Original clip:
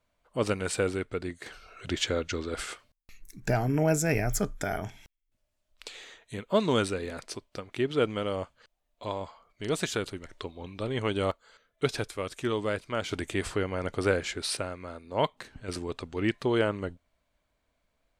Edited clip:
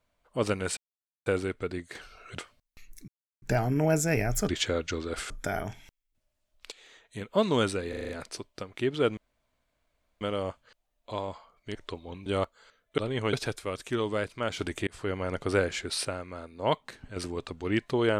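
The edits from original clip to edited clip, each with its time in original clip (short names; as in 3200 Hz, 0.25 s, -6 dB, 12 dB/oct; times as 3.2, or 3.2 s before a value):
0.77 insert silence 0.49 s
1.9–2.71 move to 4.47
3.4 insert silence 0.34 s
5.89–6.41 fade in, from -14 dB
7.06 stutter 0.04 s, 6 plays
8.14 insert room tone 1.04 s
9.68–10.27 cut
10.78–11.13 move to 11.85
13.39–13.67 fade in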